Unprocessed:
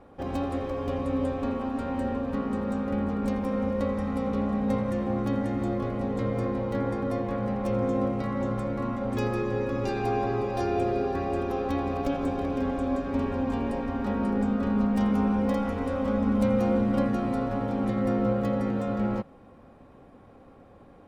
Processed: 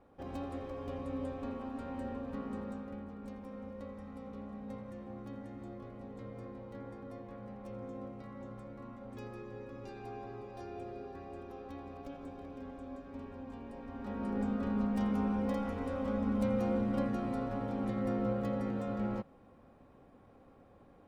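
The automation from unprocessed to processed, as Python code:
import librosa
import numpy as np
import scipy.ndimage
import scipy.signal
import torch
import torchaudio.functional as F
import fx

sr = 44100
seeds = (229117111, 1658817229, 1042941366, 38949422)

y = fx.gain(x, sr, db=fx.line((2.6, -11.0), (3.07, -18.0), (13.68, -18.0), (14.4, -8.0)))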